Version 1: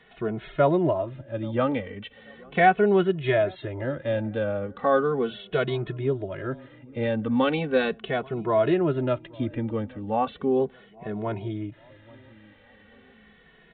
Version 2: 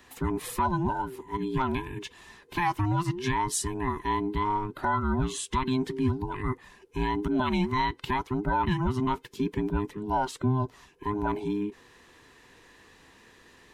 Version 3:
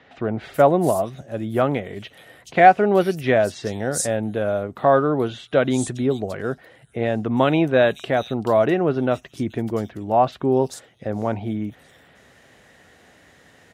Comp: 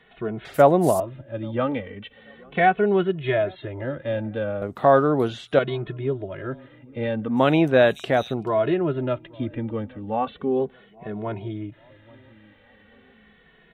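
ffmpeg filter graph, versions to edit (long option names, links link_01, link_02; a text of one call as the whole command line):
ffmpeg -i take0.wav -i take1.wav -i take2.wav -filter_complex "[2:a]asplit=3[link_01][link_02][link_03];[0:a]asplit=4[link_04][link_05][link_06][link_07];[link_04]atrim=end=0.452[link_08];[link_01]atrim=start=0.448:end=1.002[link_09];[link_05]atrim=start=0.998:end=4.622[link_10];[link_02]atrim=start=4.618:end=5.592[link_11];[link_06]atrim=start=5.588:end=7.47[link_12];[link_03]atrim=start=7.23:end=8.51[link_13];[link_07]atrim=start=8.27[link_14];[link_08][link_09]acrossfade=duration=0.004:curve1=hsin:curve2=hsin[link_15];[link_15][link_10]acrossfade=duration=0.004:curve1=hsin:curve2=hsin[link_16];[link_16][link_11]acrossfade=duration=0.004:curve1=hsin:curve2=hsin[link_17];[link_17][link_12]acrossfade=duration=0.004:curve1=hsin:curve2=hsin[link_18];[link_18][link_13]acrossfade=duration=0.24:curve1=tri:curve2=tri[link_19];[link_19][link_14]acrossfade=duration=0.24:curve1=tri:curve2=tri" out.wav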